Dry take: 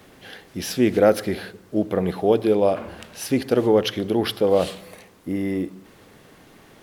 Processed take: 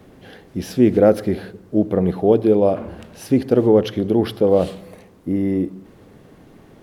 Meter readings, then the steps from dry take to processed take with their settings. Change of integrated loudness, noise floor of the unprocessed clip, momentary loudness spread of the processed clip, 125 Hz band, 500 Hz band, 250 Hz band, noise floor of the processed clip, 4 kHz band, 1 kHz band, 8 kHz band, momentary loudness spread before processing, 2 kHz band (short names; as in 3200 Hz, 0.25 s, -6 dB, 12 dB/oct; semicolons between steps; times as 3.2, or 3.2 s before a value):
+3.5 dB, -51 dBFS, 13 LU, +6.0 dB, +3.0 dB, +5.0 dB, -48 dBFS, -6.0 dB, 0.0 dB, n/a, 14 LU, -4.0 dB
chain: tilt shelf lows +6.5 dB, about 820 Hz